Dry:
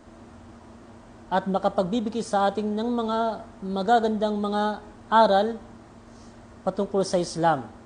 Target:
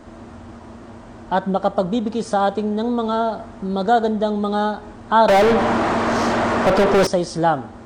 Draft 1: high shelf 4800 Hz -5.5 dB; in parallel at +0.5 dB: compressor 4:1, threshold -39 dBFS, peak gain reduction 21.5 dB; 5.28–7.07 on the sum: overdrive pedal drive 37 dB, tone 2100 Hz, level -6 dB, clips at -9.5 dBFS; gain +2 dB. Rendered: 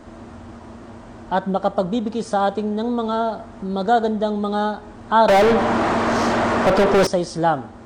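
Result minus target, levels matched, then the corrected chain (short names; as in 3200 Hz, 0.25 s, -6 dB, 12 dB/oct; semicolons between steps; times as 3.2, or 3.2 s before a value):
compressor: peak gain reduction +5 dB
high shelf 4800 Hz -5.5 dB; in parallel at +0.5 dB: compressor 4:1, threshold -32 dBFS, peak gain reduction 16 dB; 5.28–7.07 on the sum: overdrive pedal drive 37 dB, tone 2100 Hz, level -6 dB, clips at -9.5 dBFS; gain +2 dB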